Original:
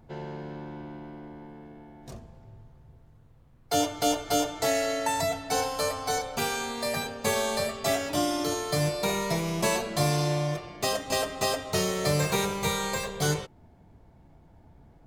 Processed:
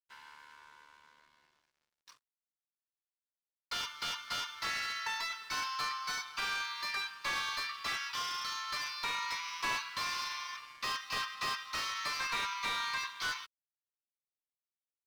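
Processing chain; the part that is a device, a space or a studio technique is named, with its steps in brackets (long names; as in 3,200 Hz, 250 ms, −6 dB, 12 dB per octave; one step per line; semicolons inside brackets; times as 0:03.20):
Chebyshev band-pass filter 1,000–5,900 Hz, order 5
early transistor amplifier (dead-zone distortion −59 dBFS; slew-rate limiting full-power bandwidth 63 Hz)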